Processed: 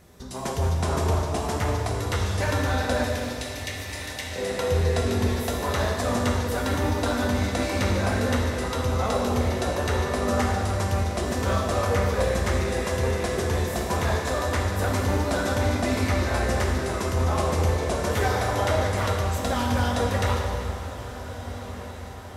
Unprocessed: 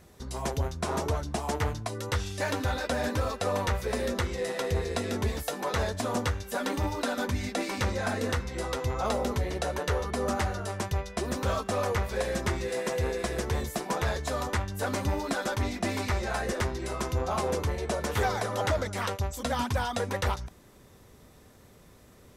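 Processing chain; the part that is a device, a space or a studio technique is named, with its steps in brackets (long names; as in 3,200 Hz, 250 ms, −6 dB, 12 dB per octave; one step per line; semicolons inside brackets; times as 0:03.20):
0:03.05–0:04.36: Butterworth high-pass 1,800 Hz 96 dB per octave
feedback delay with all-pass diffusion 1,502 ms, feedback 58%, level −14 dB
stairwell (convolution reverb RT60 2.7 s, pre-delay 13 ms, DRR −0.5 dB)
level +1 dB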